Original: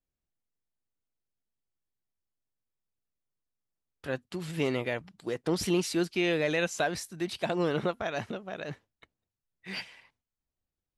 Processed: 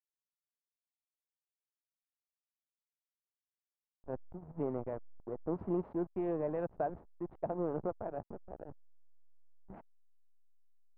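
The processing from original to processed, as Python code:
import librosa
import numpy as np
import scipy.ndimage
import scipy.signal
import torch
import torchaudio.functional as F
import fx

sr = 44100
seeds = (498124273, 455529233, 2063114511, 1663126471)

y = fx.backlash(x, sr, play_db=-27.5)
y = fx.ladder_lowpass(y, sr, hz=1100.0, resonance_pct=30)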